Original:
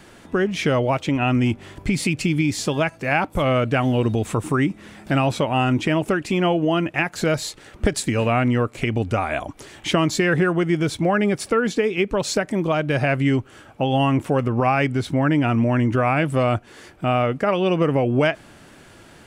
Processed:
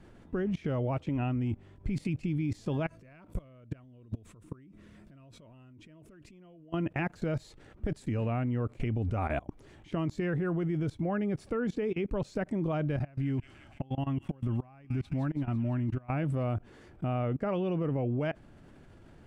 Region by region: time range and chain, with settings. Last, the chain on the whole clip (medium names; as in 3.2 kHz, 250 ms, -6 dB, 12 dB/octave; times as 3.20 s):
2.86–6.74 s: treble shelf 3.8 kHz +7 dB + compression 16:1, threshold -29 dBFS + Butterworth band-stop 810 Hz, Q 5.2
12.96–16.10 s: feedback echo behind a high-pass 169 ms, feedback 62%, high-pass 3.4 kHz, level -4.5 dB + compression, threshold -27 dBFS + peaking EQ 470 Hz -13 dB 0.23 oct
whole clip: tilt EQ -3 dB/octave; level held to a coarse grid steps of 24 dB; trim -6 dB